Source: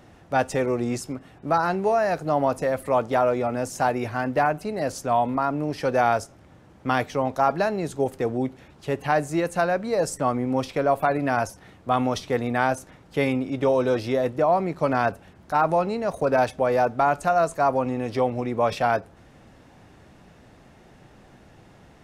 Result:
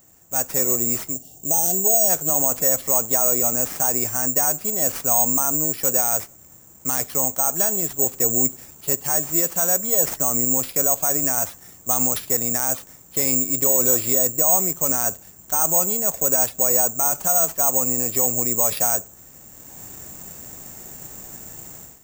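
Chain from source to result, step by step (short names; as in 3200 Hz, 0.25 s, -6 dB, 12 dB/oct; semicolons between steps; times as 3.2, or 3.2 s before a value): AGC gain up to 16 dB; careless resampling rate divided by 6×, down none, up zero stuff; spectral gain 1.13–2.09, 850–2700 Hz -21 dB; maximiser -10 dB; gain -1 dB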